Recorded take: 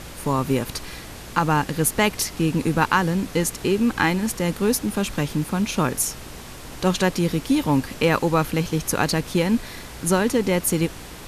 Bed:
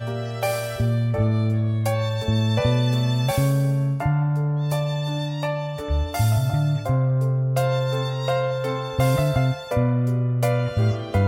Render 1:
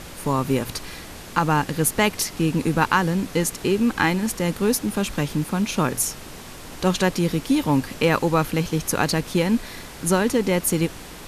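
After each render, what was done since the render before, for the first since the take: de-hum 60 Hz, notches 2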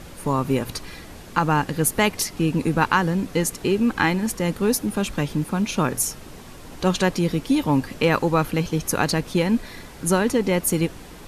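denoiser 6 dB, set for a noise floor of -39 dBFS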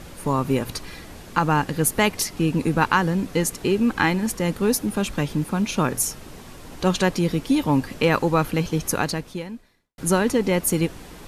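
8.9–9.98 fade out quadratic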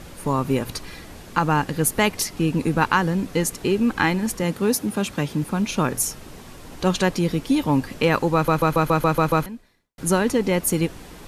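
4.43–5.43 HPF 85 Hz; 8.34 stutter in place 0.14 s, 8 plays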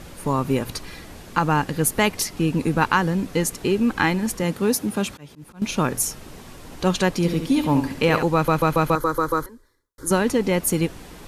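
5.05–5.62 auto swell 0.406 s; 7.13–8.23 flutter echo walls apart 11.9 m, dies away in 0.5 s; 8.95–10.11 fixed phaser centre 710 Hz, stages 6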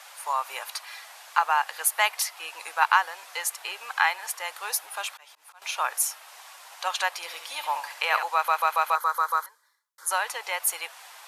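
steep high-pass 720 Hz 36 dB/oct; dynamic EQ 6300 Hz, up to -4 dB, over -40 dBFS, Q 1.1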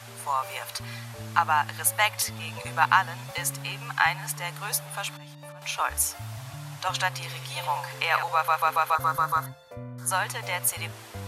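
add bed -19 dB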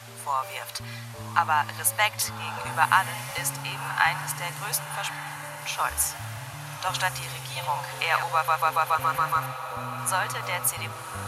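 diffused feedback echo 1.144 s, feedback 55%, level -11 dB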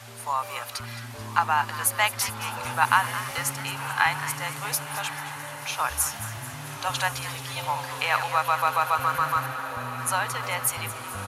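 frequency-shifting echo 0.219 s, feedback 57%, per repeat +140 Hz, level -13 dB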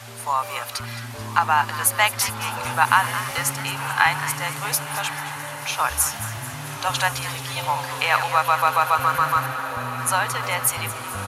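gain +4.5 dB; limiter -3 dBFS, peak gain reduction 2.5 dB

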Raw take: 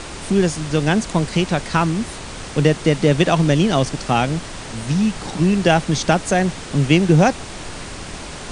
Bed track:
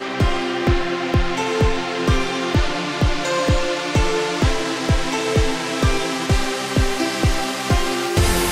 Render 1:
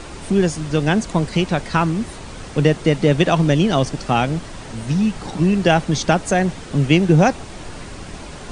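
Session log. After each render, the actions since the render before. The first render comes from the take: denoiser 6 dB, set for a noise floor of -33 dBFS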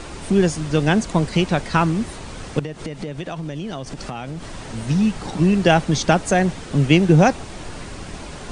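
2.59–4.59 compressor, threshold -26 dBFS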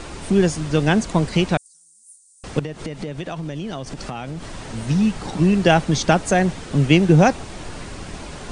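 1.57–2.44 inverse Chebyshev high-pass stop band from 2800 Hz, stop band 60 dB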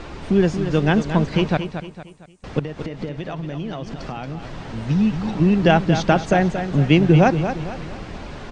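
air absorption 150 m; on a send: feedback echo 0.229 s, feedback 40%, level -9 dB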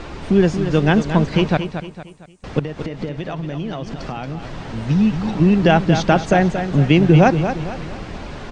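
gain +2.5 dB; limiter -2 dBFS, peak gain reduction 2.5 dB

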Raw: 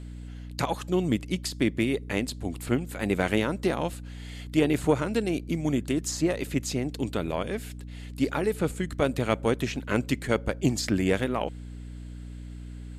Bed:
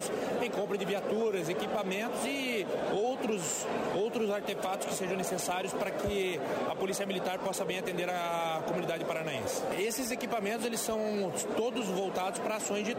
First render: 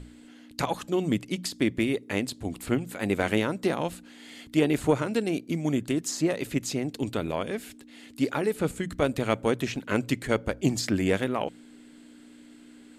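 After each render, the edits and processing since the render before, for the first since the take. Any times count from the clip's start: notches 60/120/180 Hz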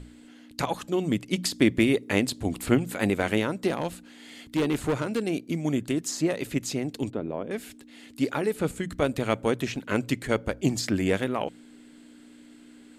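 1.33–3.1 gain +4.5 dB; 3.68–5.22 hard clip -20.5 dBFS; 7.1–7.51 band-pass 320 Hz, Q 0.67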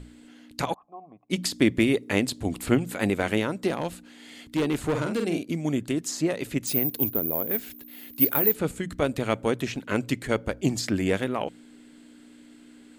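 0.74–1.3 vocal tract filter a; 4.9–5.53 doubler 47 ms -5 dB; 6.67–8.55 careless resampling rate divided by 3×, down filtered, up zero stuff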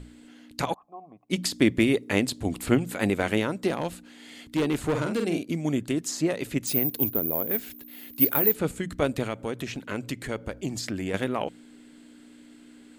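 9.27–11.14 compressor 2:1, threshold -31 dBFS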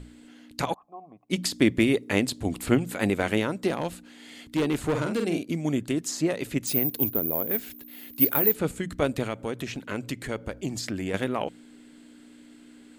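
nothing audible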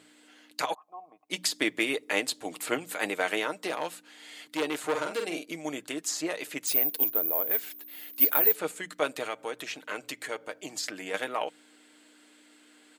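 HPF 560 Hz 12 dB/oct; comb 6.5 ms, depth 43%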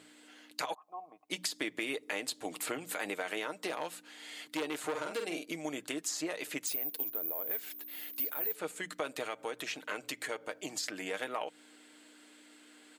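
limiter -16 dBFS, peak gain reduction 10.5 dB; compressor 3:1, threshold -34 dBFS, peak gain reduction 10 dB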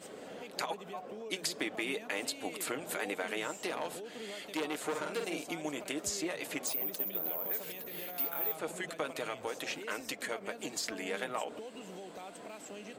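add bed -14 dB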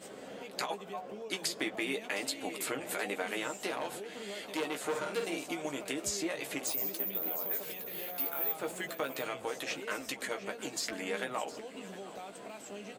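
doubler 15 ms -7 dB; echo 0.711 s -16.5 dB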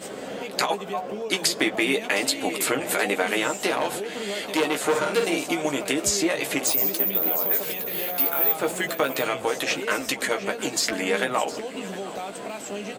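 gain +12 dB

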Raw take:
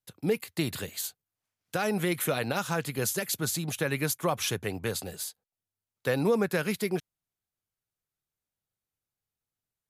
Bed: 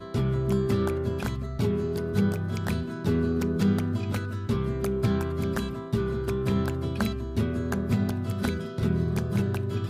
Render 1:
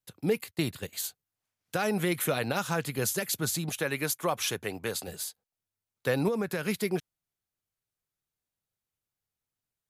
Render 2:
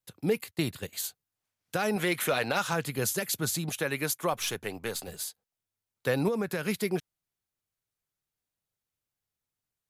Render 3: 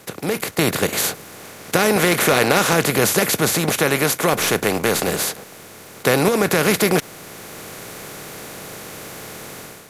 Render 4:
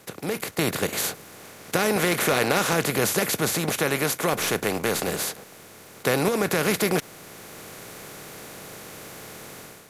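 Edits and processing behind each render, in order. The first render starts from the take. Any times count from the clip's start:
0.51–0.93 gate -37 dBFS, range -13 dB; 3.69–5.08 low shelf 160 Hz -10.5 dB; 6.28–6.68 compressor 3:1, threshold -27 dBFS
1.96–2.73 overdrive pedal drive 10 dB, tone 5200 Hz, clips at -15 dBFS; 4.33–5.19 half-wave gain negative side -3 dB
per-bin compression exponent 0.4; AGC gain up to 11.5 dB
gain -6 dB

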